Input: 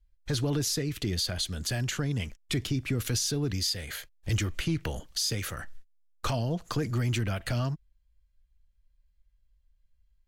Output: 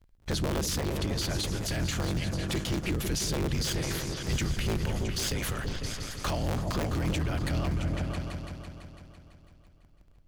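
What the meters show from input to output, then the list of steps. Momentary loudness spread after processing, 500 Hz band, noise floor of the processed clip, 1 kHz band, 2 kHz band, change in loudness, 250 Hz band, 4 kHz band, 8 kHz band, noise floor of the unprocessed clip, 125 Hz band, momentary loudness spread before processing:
6 LU, +2.0 dB, -59 dBFS, +3.0 dB, +1.0 dB, -0.5 dB, +1.0 dB, -1.5 dB, -1.0 dB, -69 dBFS, -0.5 dB, 6 LU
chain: cycle switcher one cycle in 3, inverted; repeats that get brighter 0.167 s, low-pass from 200 Hz, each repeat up 2 oct, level -3 dB; limiter -23.5 dBFS, peak gain reduction 8 dB; gain +2 dB

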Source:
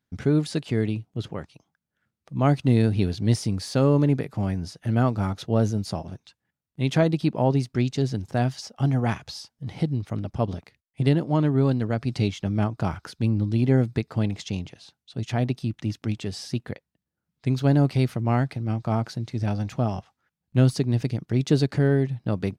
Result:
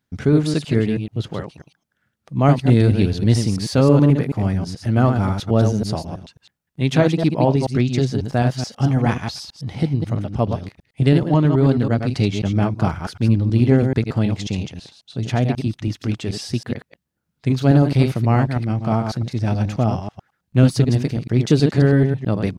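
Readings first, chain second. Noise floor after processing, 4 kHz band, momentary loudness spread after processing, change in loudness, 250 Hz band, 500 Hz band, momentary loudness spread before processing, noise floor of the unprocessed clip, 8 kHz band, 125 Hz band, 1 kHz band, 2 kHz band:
-75 dBFS, +6.0 dB, 12 LU, +6.0 dB, +6.0 dB, +6.0 dB, 12 LU, -85 dBFS, +5.5 dB, +6.0 dB, +6.0 dB, +6.0 dB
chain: reverse delay 0.108 s, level -6 dB; Doppler distortion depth 0.1 ms; gain +5 dB

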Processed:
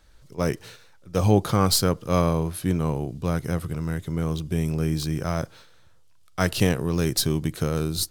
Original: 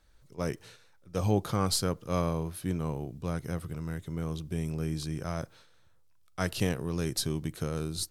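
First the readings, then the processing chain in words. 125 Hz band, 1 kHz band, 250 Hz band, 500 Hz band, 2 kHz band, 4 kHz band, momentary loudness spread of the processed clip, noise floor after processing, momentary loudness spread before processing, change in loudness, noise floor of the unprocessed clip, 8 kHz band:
+8.0 dB, +8.0 dB, +8.0 dB, +8.0 dB, +8.0 dB, +8.0 dB, 9 LU, -53 dBFS, 9 LU, +8.0 dB, -61 dBFS, +7.0 dB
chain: high shelf 9000 Hz +4.5 dB; decimation joined by straight lines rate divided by 2×; gain +8 dB

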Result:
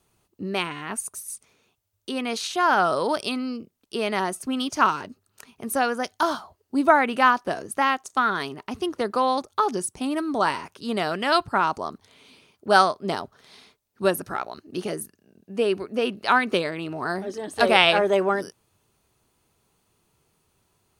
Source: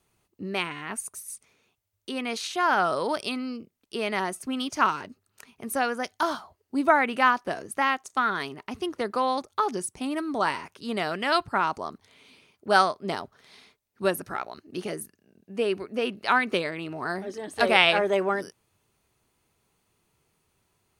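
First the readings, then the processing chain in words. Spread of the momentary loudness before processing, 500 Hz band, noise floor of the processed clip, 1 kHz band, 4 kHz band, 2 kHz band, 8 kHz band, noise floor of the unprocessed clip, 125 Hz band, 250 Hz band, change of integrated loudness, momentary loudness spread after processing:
15 LU, +3.5 dB, -73 dBFS, +3.0 dB, +2.5 dB, +1.5 dB, +3.5 dB, -76 dBFS, +3.5 dB, +3.5 dB, +3.0 dB, 15 LU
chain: bell 2100 Hz -4 dB 0.62 oct; gain +3.5 dB

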